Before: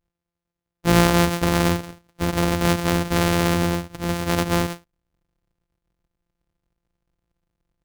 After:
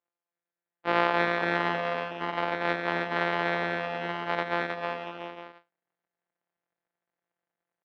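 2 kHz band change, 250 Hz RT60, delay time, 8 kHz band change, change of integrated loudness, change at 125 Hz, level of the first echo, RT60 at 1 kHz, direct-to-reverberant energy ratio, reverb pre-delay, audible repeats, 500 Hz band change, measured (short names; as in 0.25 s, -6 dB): -1.0 dB, none, 0.231 s, under -30 dB, -7.5 dB, -18.5 dB, -15.0 dB, none, none, none, 5, -5.5 dB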